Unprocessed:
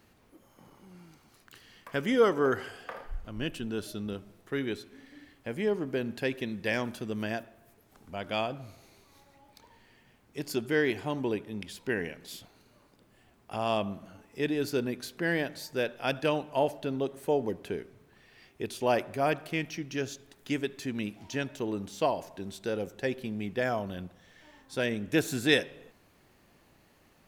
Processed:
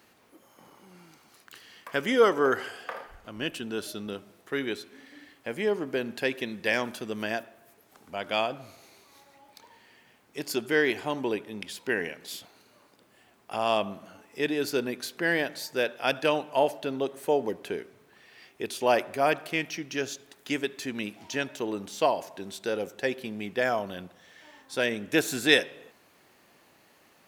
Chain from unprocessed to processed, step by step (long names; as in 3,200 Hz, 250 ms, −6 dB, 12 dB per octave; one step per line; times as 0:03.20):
high-pass filter 410 Hz 6 dB per octave
level +5 dB